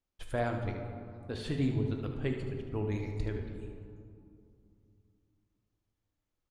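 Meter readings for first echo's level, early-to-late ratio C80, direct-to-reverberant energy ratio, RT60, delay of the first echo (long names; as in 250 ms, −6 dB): −10.0 dB, 6.5 dB, 3.0 dB, 2.6 s, 75 ms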